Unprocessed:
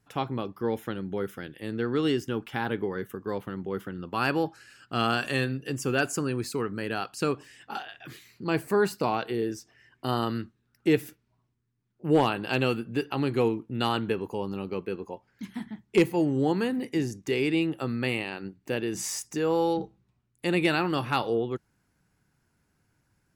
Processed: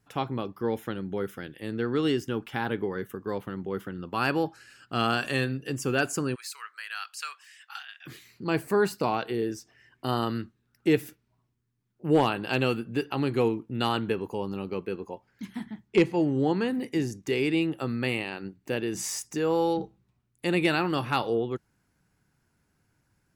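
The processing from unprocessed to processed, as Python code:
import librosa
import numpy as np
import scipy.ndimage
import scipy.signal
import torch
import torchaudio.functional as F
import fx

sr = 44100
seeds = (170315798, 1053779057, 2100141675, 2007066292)

y = fx.highpass(x, sr, hz=1300.0, slope=24, at=(6.34, 8.05), fade=0.02)
y = fx.lowpass(y, sr, hz=5900.0, slope=12, at=(15.88, 16.68))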